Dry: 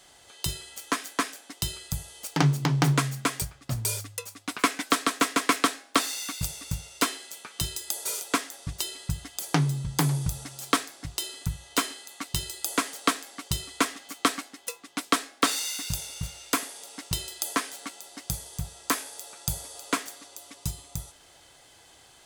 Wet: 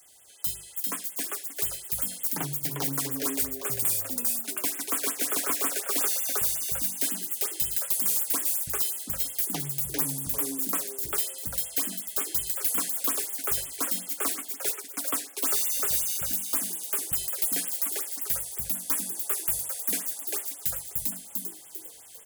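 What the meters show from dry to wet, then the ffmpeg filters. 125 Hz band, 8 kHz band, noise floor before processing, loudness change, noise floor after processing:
-13.5 dB, +4.0 dB, -55 dBFS, +2.5 dB, -47 dBFS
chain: -filter_complex "[0:a]acrossover=split=190|1100[a][b][c];[c]volume=24.5dB,asoftclip=hard,volume=-24.5dB[d];[a][b][d]amix=inputs=3:normalize=0,aemphasis=mode=production:type=50fm,bandreject=f=50:t=h:w=6,bandreject=f=100:t=h:w=6,bandreject=f=150:t=h:w=6,bandreject=f=200:t=h:w=6,bandreject=f=250:t=h:w=6,bandreject=f=300:t=h:w=6,asplit=2[e][f];[f]asplit=4[g][h][i][j];[g]adelay=397,afreqshift=130,volume=-3dB[k];[h]adelay=794,afreqshift=260,volume=-12.4dB[l];[i]adelay=1191,afreqshift=390,volume=-21.7dB[m];[j]adelay=1588,afreqshift=520,volume=-31.1dB[n];[k][l][m][n]amix=inputs=4:normalize=0[o];[e][o]amix=inputs=2:normalize=0,dynaudnorm=f=250:g=13:m=11.5dB,highshelf=f=11k:g=6,acrossover=split=290[p][q];[p]acompressor=threshold=-31dB:ratio=2.5[r];[r][q]amix=inputs=2:normalize=0,asoftclip=type=tanh:threshold=-11dB,afftfilt=real='re*(1-between(b*sr/1024,980*pow(5100/980,0.5+0.5*sin(2*PI*5.5*pts/sr))/1.41,980*pow(5100/980,0.5+0.5*sin(2*PI*5.5*pts/sr))*1.41))':imag='im*(1-between(b*sr/1024,980*pow(5100/980,0.5+0.5*sin(2*PI*5.5*pts/sr))/1.41,980*pow(5100/980,0.5+0.5*sin(2*PI*5.5*pts/sr))*1.41))':win_size=1024:overlap=0.75,volume=-9dB"

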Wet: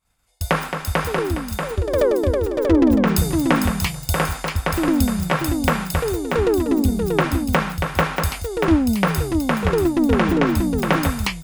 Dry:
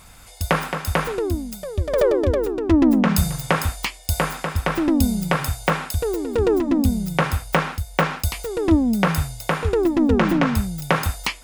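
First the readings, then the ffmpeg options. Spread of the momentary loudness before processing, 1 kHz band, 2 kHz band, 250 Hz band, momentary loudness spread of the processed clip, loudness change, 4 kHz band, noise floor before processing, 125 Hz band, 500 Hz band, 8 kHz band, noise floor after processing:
7 LU, +1.0 dB, +1.0 dB, +1.0 dB, 6 LU, +1.0 dB, +1.0 dB, -43 dBFS, +1.0 dB, +1.0 dB, +1.0 dB, -35 dBFS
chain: -af "aecho=1:1:636:0.562,agate=range=-33dB:threshold=-31dB:ratio=3:detection=peak"

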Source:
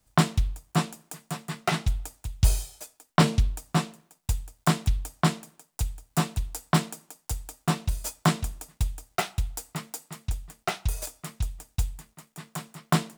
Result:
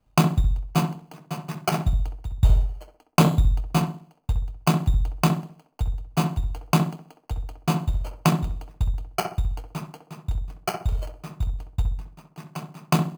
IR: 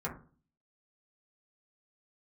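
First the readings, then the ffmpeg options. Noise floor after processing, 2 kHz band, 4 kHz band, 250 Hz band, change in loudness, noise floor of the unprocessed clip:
-61 dBFS, -1.0 dB, -0.5 dB, +4.0 dB, +3.5 dB, -71 dBFS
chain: -filter_complex "[0:a]crystalizer=i=2.5:c=0,lowpass=f=1.4k:w=0.5412,lowpass=f=1.4k:w=1.3066,acrusher=samples=12:mix=1:aa=0.000001,asplit=2[a][b];[b]adelay=65,lowpass=f=960:p=1,volume=-5dB,asplit=2[c][d];[d]adelay=65,lowpass=f=960:p=1,volume=0.42,asplit=2[e][f];[f]adelay=65,lowpass=f=960:p=1,volume=0.42,asplit=2[g][h];[h]adelay=65,lowpass=f=960:p=1,volume=0.42,asplit=2[i][j];[j]adelay=65,lowpass=f=960:p=1,volume=0.42[k];[a][c][e][g][i][k]amix=inputs=6:normalize=0,volume=2.5dB"

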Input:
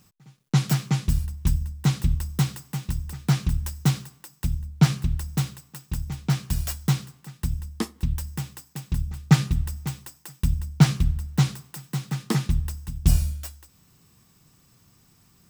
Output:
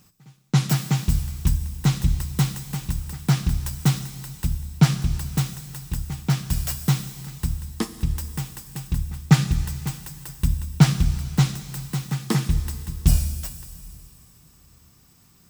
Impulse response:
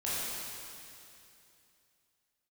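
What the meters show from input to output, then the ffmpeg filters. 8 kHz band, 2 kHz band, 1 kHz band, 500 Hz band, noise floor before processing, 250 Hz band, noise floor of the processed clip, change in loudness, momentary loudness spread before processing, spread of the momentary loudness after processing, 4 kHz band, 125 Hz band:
+3.5 dB, +2.0 dB, +2.0 dB, +2.0 dB, -60 dBFS, +2.0 dB, -56 dBFS, +1.5 dB, 13 LU, 13 LU, +2.5 dB, +1.5 dB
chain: -filter_complex "[0:a]asplit=2[a][b];[1:a]atrim=start_sample=2205,highshelf=f=4.8k:g=11[c];[b][c]afir=irnorm=-1:irlink=0,volume=-18.5dB[d];[a][d]amix=inputs=2:normalize=0,volume=1dB"

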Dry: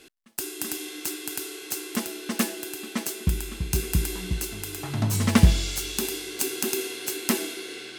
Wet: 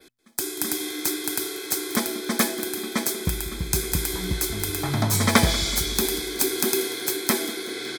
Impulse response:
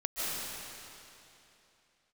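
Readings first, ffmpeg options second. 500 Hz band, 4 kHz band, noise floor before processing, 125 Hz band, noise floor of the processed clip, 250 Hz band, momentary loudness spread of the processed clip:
+5.0 dB, +5.5 dB, -43 dBFS, -2.0 dB, -38 dBFS, +1.5 dB, 7 LU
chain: -filter_complex "[0:a]bandreject=f=121.6:t=h:w=4,bandreject=f=243.2:t=h:w=4,asplit=2[a][b];[b]aecho=0:1:187|374|561|748:0.126|0.0642|0.0327|0.0167[c];[a][c]amix=inputs=2:normalize=0,adynamicequalizer=threshold=0.00398:dfrequency=7100:dqfactor=1.9:tfrequency=7100:tqfactor=1.9:attack=5:release=100:ratio=0.375:range=2:mode=cutabove:tftype=bell,acrossover=split=380|3000[d][e][f];[d]acompressor=threshold=-32dB:ratio=3[g];[g][e][f]amix=inputs=3:normalize=0,asuperstop=centerf=2800:order=20:qfactor=6.5,dynaudnorm=f=220:g=3:m=9dB"

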